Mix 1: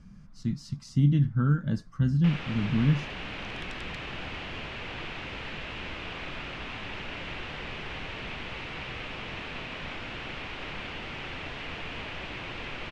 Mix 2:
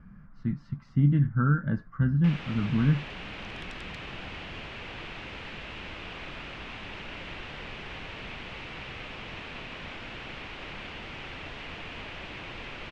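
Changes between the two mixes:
speech: add resonant low-pass 1.6 kHz, resonance Q 2.1; reverb: off

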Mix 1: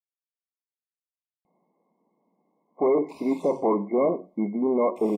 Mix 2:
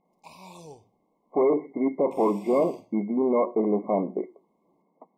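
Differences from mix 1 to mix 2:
speech: entry -1.45 s; background: entry -2.85 s

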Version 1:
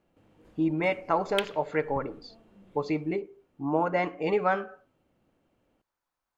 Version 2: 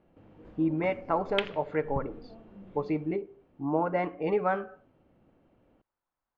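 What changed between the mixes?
background +7.5 dB; master: add tape spacing loss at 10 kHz 26 dB

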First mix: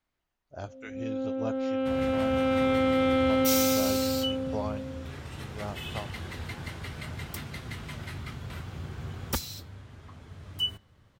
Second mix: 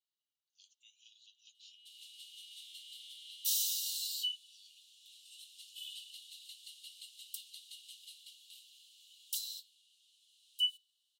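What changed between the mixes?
first sound -7.5 dB; master: add rippled Chebyshev high-pass 2.8 kHz, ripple 6 dB

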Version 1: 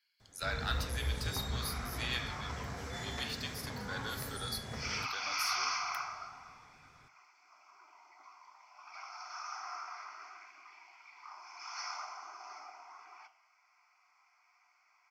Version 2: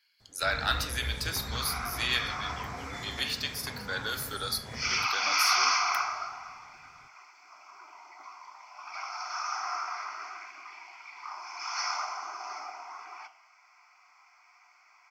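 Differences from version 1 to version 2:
speech +8.5 dB; second sound +9.5 dB

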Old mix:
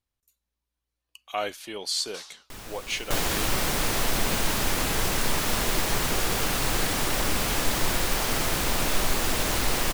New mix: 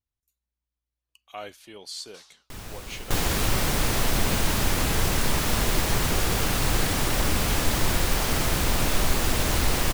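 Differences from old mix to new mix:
speech -9.0 dB; master: add peaking EQ 65 Hz +7.5 dB 3 oct

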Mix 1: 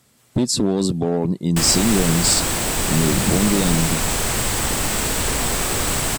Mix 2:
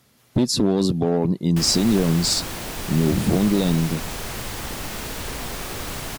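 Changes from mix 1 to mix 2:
background -8.5 dB; master: add peaking EQ 8 kHz -11.5 dB 0.25 oct

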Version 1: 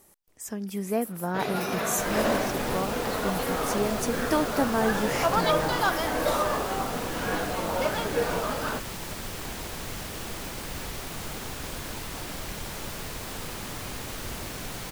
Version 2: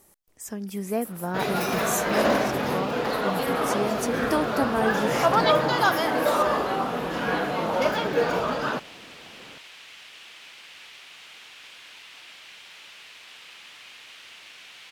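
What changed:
first sound +4.0 dB; second sound: add band-pass filter 2.8 kHz, Q 2

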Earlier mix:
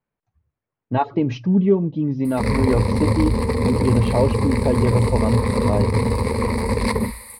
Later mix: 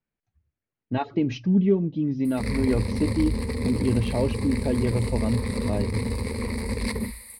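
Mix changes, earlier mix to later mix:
background -4.0 dB; master: add graphic EQ 125/500/1000 Hz -6/-5/-10 dB

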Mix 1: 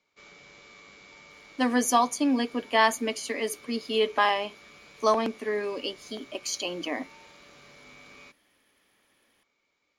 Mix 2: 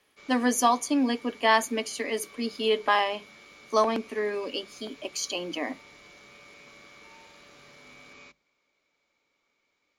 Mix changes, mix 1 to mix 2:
speech: entry -1.30 s; master: add hum notches 50/100/150/200 Hz

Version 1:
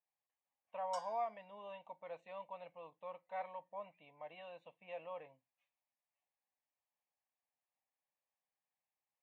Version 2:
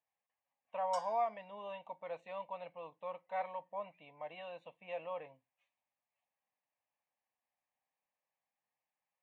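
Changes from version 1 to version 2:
speech +4.5 dB; reverb: on, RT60 0.40 s

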